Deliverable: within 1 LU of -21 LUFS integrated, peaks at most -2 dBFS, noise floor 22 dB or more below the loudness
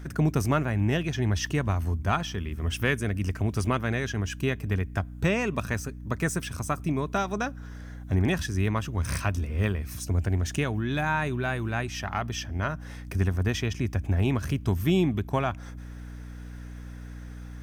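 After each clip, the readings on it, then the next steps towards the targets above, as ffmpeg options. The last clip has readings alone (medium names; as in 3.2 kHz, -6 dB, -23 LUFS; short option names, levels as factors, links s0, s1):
hum 60 Hz; highest harmonic 300 Hz; hum level -37 dBFS; loudness -28.0 LUFS; peak level -11.5 dBFS; loudness target -21.0 LUFS
-> -af "bandreject=f=60:t=h:w=4,bandreject=f=120:t=h:w=4,bandreject=f=180:t=h:w=4,bandreject=f=240:t=h:w=4,bandreject=f=300:t=h:w=4"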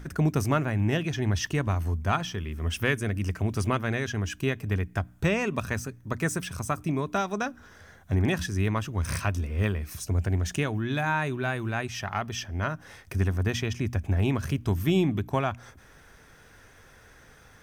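hum not found; loudness -28.5 LUFS; peak level -12.0 dBFS; loudness target -21.0 LUFS
-> -af "volume=2.37"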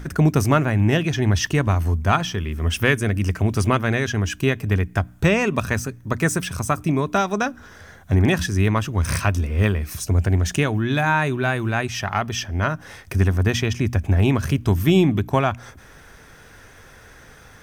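loudness -21.0 LUFS; peak level -4.5 dBFS; noise floor -47 dBFS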